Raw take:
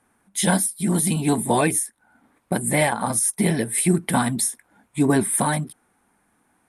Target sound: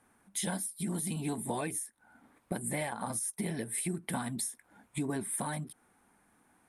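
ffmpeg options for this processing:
ffmpeg -i in.wav -af "acompressor=threshold=-32dB:ratio=4,volume=-2.5dB" out.wav

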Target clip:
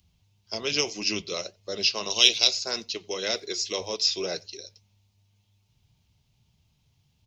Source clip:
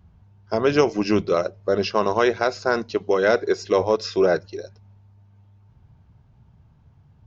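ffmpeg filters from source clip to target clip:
ffmpeg -i in.wav -filter_complex "[0:a]asettb=1/sr,asplit=3[link_01][link_02][link_03];[link_01]atrim=end=2.104[link_04];[link_02]atrim=start=2.1:end=2.51,asetpts=PTS-STARTPTS,afade=type=in:duration=0.004:curve=qsin,afade=type=out:start_time=0.406:duration=0.004:curve=qsin,highshelf=frequency=2300:width_type=q:width=3:gain=8[link_05];[link_03]atrim=start=2.506[link_06];[link_04][link_05]acrossfade=duration=0.004:curve1=hsin:curve2=qsin[link_07];[link_07][link_06]acrossfade=duration=0.004:curve1=qsin:curve2=hsin,asplit=2[link_08][link_09];[link_09]adelay=90,highpass=300,lowpass=3400,asoftclip=type=hard:threshold=-11dB,volume=-28dB[link_10];[link_08][link_10]amix=inputs=2:normalize=0,flanger=delay=3:depth=4.9:regen=-72:speed=1.8:shape=triangular,acrossover=split=400|750[link_11][link_12][link_13];[link_13]aexciter=amount=11.5:drive=4:freq=2300[link_14];[link_11][link_12][link_14]amix=inputs=3:normalize=0,volume=-9.5dB" out.wav

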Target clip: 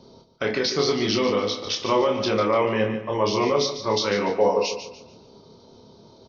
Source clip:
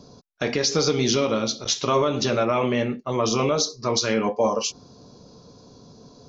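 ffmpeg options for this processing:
ffmpeg -i in.wav -filter_complex "[0:a]bass=frequency=250:gain=-6,treble=frequency=4000:gain=-6,bandreject=frequency=50:width_type=h:width=6,bandreject=frequency=100:width_type=h:width=6,bandreject=frequency=150:width_type=h:width=6,bandreject=frequency=200:width_type=h:width=6,bandreject=frequency=250:width_type=h:width=6,bandreject=frequency=300:width_type=h:width=6,bandreject=frequency=350:width_type=h:width=6,asetrate=40440,aresample=44100,atempo=1.09051,asplit=2[link_01][link_02];[link_02]adelay=28,volume=-4dB[link_03];[link_01][link_03]amix=inputs=2:normalize=0,aecho=1:1:146|292|438|584:0.299|0.102|0.0345|0.0117" out.wav

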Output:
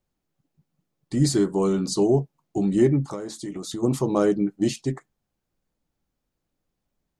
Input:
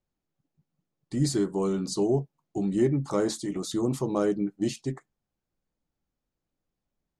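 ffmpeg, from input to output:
ffmpeg -i in.wav -filter_complex "[0:a]asplit=3[link_01][link_02][link_03];[link_01]afade=type=out:start_time=3.05:duration=0.02[link_04];[link_02]acompressor=threshold=-34dB:ratio=16,afade=type=in:start_time=3.05:duration=0.02,afade=type=out:start_time=3.82:duration=0.02[link_05];[link_03]afade=type=in:start_time=3.82:duration=0.02[link_06];[link_04][link_05][link_06]amix=inputs=3:normalize=0,volume=5dB" out.wav

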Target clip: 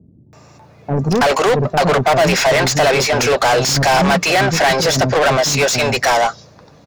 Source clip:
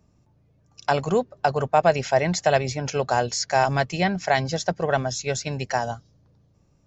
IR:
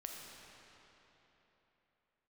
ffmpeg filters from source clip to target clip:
-filter_complex "[0:a]bandreject=frequency=3100:width=9.8,acrossover=split=320[link_01][link_02];[link_02]adelay=330[link_03];[link_01][link_03]amix=inputs=2:normalize=0,asplit=2[link_04][link_05];[link_05]highpass=frequency=720:poles=1,volume=36dB,asoftclip=type=tanh:threshold=-6dB[link_06];[link_04][link_06]amix=inputs=2:normalize=0,lowpass=frequency=4100:poles=1,volume=-6dB"

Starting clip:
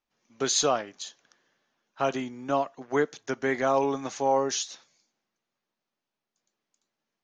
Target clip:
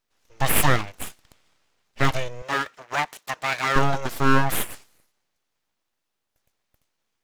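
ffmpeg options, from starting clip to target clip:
ffmpeg -i in.wav -filter_complex "[0:a]aeval=exprs='abs(val(0))':channel_layout=same,asettb=1/sr,asplit=3[link_01][link_02][link_03];[link_01]atrim=end=2.424[link_04];[link_02]atrim=start=2.42:end=3.76,asetpts=PTS-STARTPTS,afade=type=in:duration=0.004:curve=qsin,afade=type=out:start_time=1.336:duration=0.004:curve=qsin,highpass=frequency=780:poles=1[link_05];[link_03]atrim=start=3.756[link_06];[link_04][link_05]acrossfade=duration=0.004:curve1=hsin:curve2=qsin[link_07];[link_07][link_06]acrossfade=duration=0.004:curve1=qsin:curve2=hsin,volume=8dB" out.wav

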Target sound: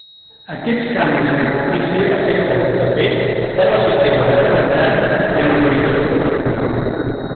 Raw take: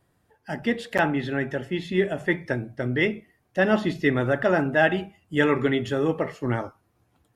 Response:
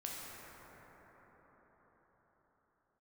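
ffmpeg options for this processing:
-filter_complex "[0:a]asettb=1/sr,asplit=3[link_01][link_02][link_03];[link_01]atrim=end=2.054[link_04];[link_02]atrim=start=2.05:end=4.36,asetpts=PTS-STARTPTS,afade=type=in:duration=0.004:curve=qsin,afade=type=out:start_time=2.306:duration=0.004:curve=qsin,equalizer=frequency=125:width_type=o:width=1:gain=3,equalizer=frequency=250:width_type=o:width=1:gain=-11,equalizer=frequency=500:width_type=o:width=1:gain=8,equalizer=frequency=1000:width_type=o:width=1:gain=4,equalizer=frequency=2000:width_type=o:width=1:gain=-8,equalizer=frequency=4000:width_type=o:width=1:gain=12[link_05];[link_03]atrim=start=4.356[link_06];[link_04][link_05]acrossfade=duration=0.004:curve1=hsin:curve2=qsin[link_07];[link_07][link_06]acrossfade=duration=0.004:curve1=qsin:curve2=hsin[link_08];[1:a]atrim=start_sample=2205[link_09];[link_08][link_09]afir=irnorm=-1:irlink=0,volume=19.5dB,asoftclip=hard,volume=-19.5dB,dynaudnorm=framelen=150:gausssize=3:maxgain=11dB,aeval=exprs='val(0)+0.0447*sin(2*PI*4200*n/s)':channel_layout=same,highshelf=frequency=7400:gain=-3.5,aecho=1:1:371:0.075" -ar 48000 -c:a libopus -b:a 8k

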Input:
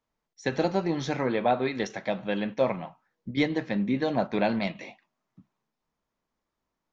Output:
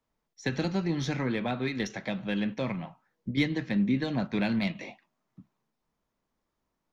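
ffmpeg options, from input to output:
ffmpeg -i in.wav -filter_complex "[0:a]lowshelf=frequency=480:gain=3.5,acrossover=split=290|1300[link_01][link_02][link_03];[link_02]acompressor=threshold=-38dB:ratio=6[link_04];[link_03]aeval=exprs='0.126*(cos(1*acos(clip(val(0)/0.126,-1,1)))-cos(1*PI/2))+0.00224*(cos(8*acos(clip(val(0)/0.126,-1,1)))-cos(8*PI/2))':channel_layout=same[link_05];[link_01][link_04][link_05]amix=inputs=3:normalize=0" out.wav

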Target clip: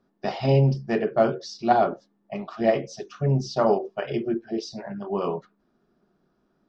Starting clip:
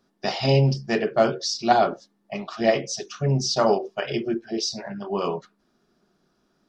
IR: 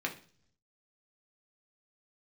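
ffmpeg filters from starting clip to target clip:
-af "lowpass=frequency=1300:poles=1"

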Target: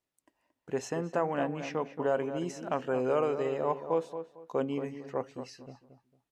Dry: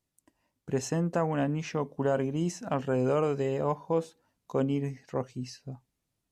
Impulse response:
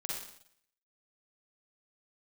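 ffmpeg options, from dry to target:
-filter_complex "[0:a]bass=frequency=250:gain=-12,treble=frequency=4000:gain=-7,asplit=2[link_01][link_02];[link_02]adelay=226,lowpass=frequency=2000:poles=1,volume=-9.5dB,asplit=2[link_03][link_04];[link_04]adelay=226,lowpass=frequency=2000:poles=1,volume=0.26,asplit=2[link_05][link_06];[link_06]adelay=226,lowpass=frequency=2000:poles=1,volume=0.26[link_07];[link_01][link_03][link_05][link_07]amix=inputs=4:normalize=0"

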